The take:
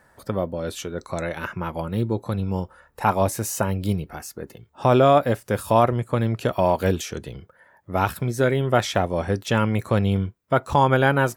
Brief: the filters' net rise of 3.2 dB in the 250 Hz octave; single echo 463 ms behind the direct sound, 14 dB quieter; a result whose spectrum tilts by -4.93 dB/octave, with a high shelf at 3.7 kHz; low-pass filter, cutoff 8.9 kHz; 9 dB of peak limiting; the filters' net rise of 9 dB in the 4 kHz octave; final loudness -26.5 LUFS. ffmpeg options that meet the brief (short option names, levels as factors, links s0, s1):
-af "lowpass=8900,equalizer=f=250:t=o:g=4,highshelf=f=3700:g=4.5,equalizer=f=4000:t=o:g=9,alimiter=limit=0.266:level=0:latency=1,aecho=1:1:463:0.2,volume=0.794"